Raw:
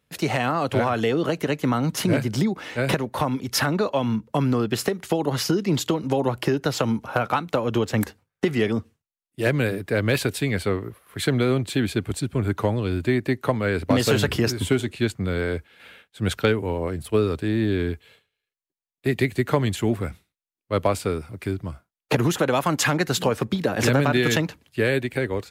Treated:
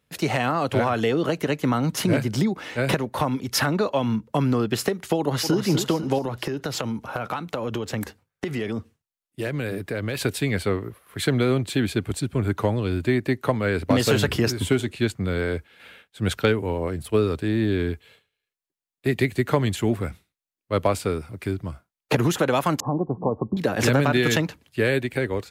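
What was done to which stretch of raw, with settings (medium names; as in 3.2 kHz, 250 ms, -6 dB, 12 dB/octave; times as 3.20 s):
5.18–5.59 s: echo throw 250 ms, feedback 45%, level -7 dB
6.18–10.21 s: compression, threshold -23 dBFS
22.80–23.57 s: rippled Chebyshev low-pass 1.1 kHz, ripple 3 dB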